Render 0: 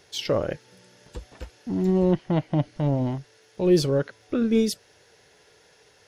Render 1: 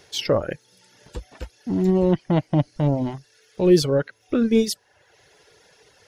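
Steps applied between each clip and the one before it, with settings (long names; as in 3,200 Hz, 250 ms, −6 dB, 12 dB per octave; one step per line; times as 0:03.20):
reverb reduction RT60 0.78 s
level +4 dB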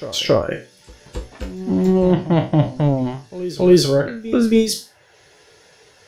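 peak hold with a decay on every bin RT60 0.32 s
backwards echo 274 ms −15 dB
level +3.5 dB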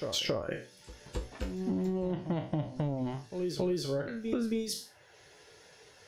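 downward compressor 12 to 1, threshold −22 dBFS, peak gain reduction 16 dB
level −6.5 dB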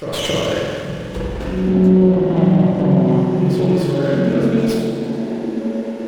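echo through a band-pass that steps 555 ms, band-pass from 160 Hz, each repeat 0.7 octaves, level −2 dB
spring reverb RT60 2.2 s, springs 43/49 ms, chirp 65 ms, DRR −7 dB
windowed peak hold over 5 samples
level +8 dB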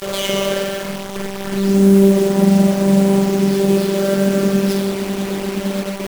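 low-shelf EQ 84 Hz −6.5 dB
phases set to zero 196 Hz
bit reduction 5 bits
level +2.5 dB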